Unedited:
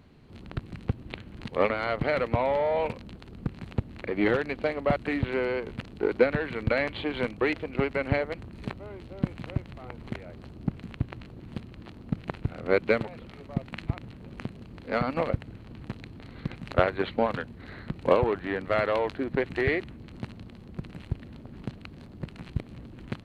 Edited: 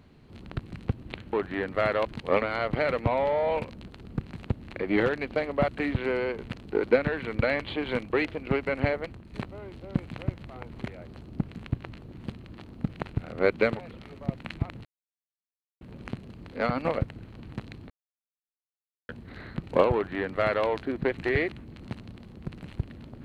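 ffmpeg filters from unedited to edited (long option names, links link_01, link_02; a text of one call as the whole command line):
ffmpeg -i in.wav -filter_complex "[0:a]asplit=7[link_01][link_02][link_03][link_04][link_05][link_06][link_07];[link_01]atrim=end=1.332[link_08];[link_02]atrim=start=18.258:end=18.982[link_09];[link_03]atrim=start=1.328:end=8.61,asetpts=PTS-STARTPTS,afade=type=out:start_time=6.952:duration=0.33:silence=0.446684[link_10];[link_04]atrim=start=8.61:end=14.13,asetpts=PTS-STARTPTS,afade=type=in:duration=0.004:curve=hsin:silence=0.446684,afade=type=out:start_time=5.516:duration=0.004:curve=hsin,apad=pad_dur=0.96[link_11];[link_05]atrim=start=14.13:end=16.22,asetpts=PTS-STARTPTS,afade=type=in:duration=0.004:curve=hsin,afade=type=out:start_time=2.086:duration=0.004:curve=hsin[link_12];[link_06]atrim=start=16.22:end=17.41,asetpts=PTS-STARTPTS,volume=0[link_13];[link_07]atrim=start=17.41,asetpts=PTS-STARTPTS,afade=type=in:duration=0.004:curve=hsin[link_14];[link_08][link_09]acrossfade=duration=0.004:curve1=hsin:curve2=hsin[link_15];[link_10][link_11][link_12][link_13][link_14]concat=n=5:v=0:a=1[link_16];[link_15][link_16]acrossfade=duration=0.004:curve1=hsin:curve2=hsin" out.wav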